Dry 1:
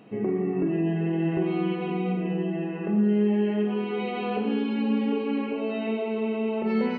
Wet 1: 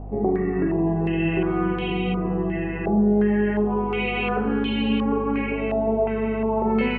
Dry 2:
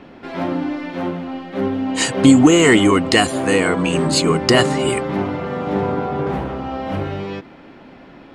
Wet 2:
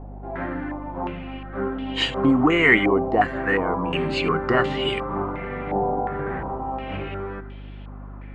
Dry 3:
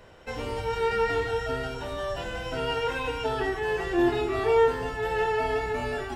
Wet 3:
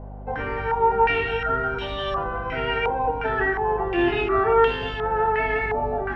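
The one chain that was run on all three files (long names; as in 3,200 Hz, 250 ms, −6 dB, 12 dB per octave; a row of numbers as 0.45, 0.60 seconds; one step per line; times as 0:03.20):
mains hum 50 Hz, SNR 11 dB
tuned comb filter 390 Hz, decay 0.73 s, mix 70%
low-pass on a step sequencer 2.8 Hz 780–3,200 Hz
loudness normalisation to −23 LKFS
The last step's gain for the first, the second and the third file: +12.5, +1.5, +11.0 decibels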